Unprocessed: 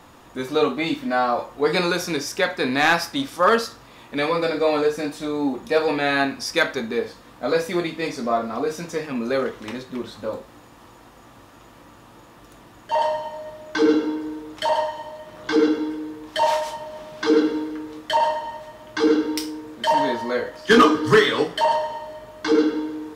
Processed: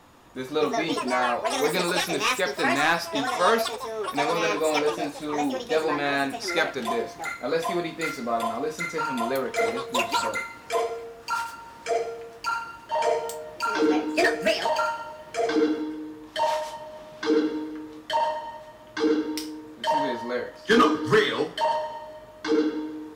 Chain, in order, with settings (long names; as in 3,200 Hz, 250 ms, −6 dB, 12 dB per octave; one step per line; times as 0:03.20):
delay with pitch and tempo change per echo 363 ms, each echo +7 semitones, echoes 2
level −5 dB